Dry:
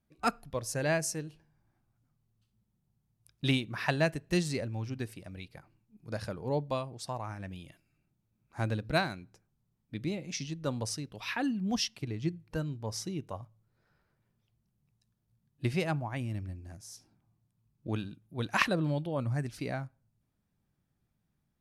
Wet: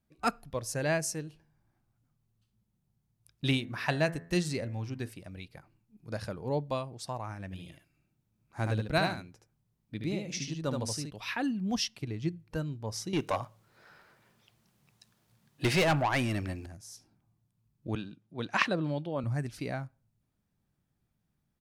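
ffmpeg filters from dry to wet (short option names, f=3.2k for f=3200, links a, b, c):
-filter_complex "[0:a]asettb=1/sr,asplit=3[a][b][c];[a]atrim=end=3.474[d];[b]atrim=start=3.47:end=5.09,asetpts=PTS-STARTPTS,afade=t=in:d=0.004:c=qsin,afade=t=out:st=1.616:d=0.004:c=qsin,bandreject=f=84.21:t=h:w=4,bandreject=f=168.42:t=h:w=4,bandreject=f=252.63:t=h:w=4,bandreject=f=336.84:t=h:w=4,bandreject=f=421.05:t=h:w=4,bandreject=f=505.26:t=h:w=4,bandreject=f=589.47:t=h:w=4,bandreject=f=673.68:t=h:w=4,bandreject=f=757.89:t=h:w=4,bandreject=f=842.1:t=h:w=4,bandreject=f=926.31:t=h:w=4,bandreject=f=1.01052k:t=h:w=4,bandreject=f=1.09473k:t=h:w=4,bandreject=f=1.17894k:t=h:w=4,bandreject=f=1.26315k:t=h:w=4,bandreject=f=1.34736k:t=h:w=4,bandreject=f=1.43157k:t=h:w=4,bandreject=f=1.51578k:t=h:w=4,bandreject=f=1.59999k:t=h:w=4,bandreject=f=1.6842k:t=h:w=4,bandreject=f=1.76841k:t=h:w=4,bandreject=f=1.85262k:t=h:w=4,bandreject=f=1.93683k:t=h:w=4,bandreject=f=2.02104k:t=h:w=4,bandreject=f=2.10525k:t=h:w=4,bandreject=f=2.18946k:t=h:w=4[e];[c]atrim=start=5.086[f];[d][e]acrossfade=d=0.004:c1=hsin:c2=qsin[g];[g][f]acrossfade=d=0.004:c1=qsin:c2=hsin,asplit=3[h][i][j];[h]afade=t=out:st=7.52:d=0.02[k];[i]aecho=1:1:74:0.631,afade=t=in:st=7.52:d=0.02,afade=t=out:st=11.09:d=0.02[l];[j]afade=t=in:st=11.09:d=0.02[m];[k][l][m]amix=inputs=3:normalize=0,asettb=1/sr,asplit=3[n][o][p];[n]atrim=end=13.134[q];[o]atrim=start=13.13:end=16.66,asetpts=PTS-STARTPTS,afade=t=in:d=0.004:c=qsin,afade=t=out:st=3.526:d=0.004:c=qsin,asplit=2[r][s];[s]highpass=f=720:p=1,volume=25dB,asoftclip=type=tanh:threshold=-18dB[t];[r][t]amix=inputs=2:normalize=0,lowpass=f=6.6k:p=1,volume=-6dB[u];[p]atrim=start=16.656[v];[q][u]acrossfade=d=0.004:c1=hsin:c2=qsin[w];[w][v]acrossfade=d=0.004:c1=qsin:c2=hsin,asettb=1/sr,asplit=3[x][y][z];[x]atrim=end=17.954[aa];[y]atrim=start=17.95:end=19.24,asetpts=PTS-STARTPTS,afade=t=in:d=0.004:c=qsin,afade=t=out:st=1.286:d=0.004:c=qsin,highpass=150,lowpass=6.2k[ab];[z]atrim=start=19.236[ac];[aa][ab]acrossfade=d=0.004:c1=hsin:c2=qsin[ad];[ad][ac]acrossfade=d=0.004:c1=qsin:c2=hsin"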